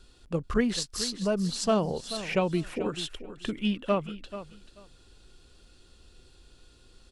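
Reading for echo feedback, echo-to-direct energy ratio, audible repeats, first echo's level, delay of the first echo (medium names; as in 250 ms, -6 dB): 18%, -13.0 dB, 2, -13.0 dB, 436 ms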